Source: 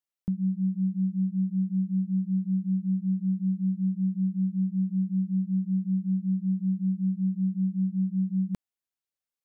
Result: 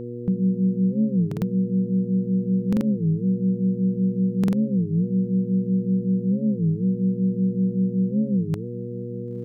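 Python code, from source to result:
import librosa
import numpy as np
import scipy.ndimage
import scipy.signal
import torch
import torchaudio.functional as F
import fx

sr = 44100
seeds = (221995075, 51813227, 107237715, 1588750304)

p1 = fx.peak_eq(x, sr, hz=270.0, db=-7.0, octaves=0.51)
p2 = fx.dmg_buzz(p1, sr, base_hz=120.0, harmonics=4, level_db=-40.0, tilt_db=-1, odd_only=False)
p3 = fx.low_shelf(p2, sr, hz=72.0, db=-7.0)
p4 = p3 + fx.echo_diffused(p3, sr, ms=993, feedback_pct=48, wet_db=-14.5, dry=0)
p5 = fx.buffer_glitch(p4, sr, at_s=(1.28, 2.68, 4.39), block=2048, repeats=2)
p6 = fx.record_warp(p5, sr, rpm=33.33, depth_cents=250.0)
y = p6 * librosa.db_to_amplitude(8.0)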